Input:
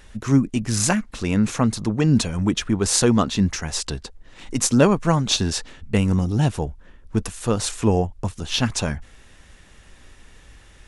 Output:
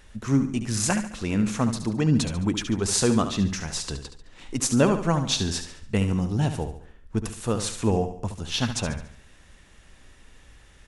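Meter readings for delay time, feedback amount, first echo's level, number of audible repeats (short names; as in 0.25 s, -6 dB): 71 ms, 43%, -9.5 dB, 4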